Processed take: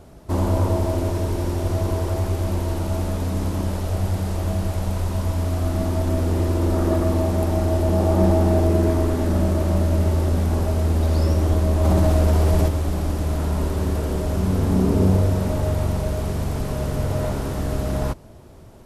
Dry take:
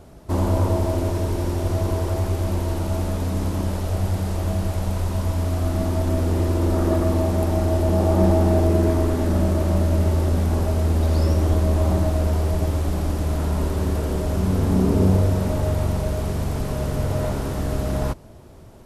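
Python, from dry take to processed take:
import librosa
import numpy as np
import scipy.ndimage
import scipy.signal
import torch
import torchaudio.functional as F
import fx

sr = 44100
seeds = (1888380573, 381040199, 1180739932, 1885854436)

y = fx.env_flatten(x, sr, amount_pct=70, at=(11.83, 12.67), fade=0.02)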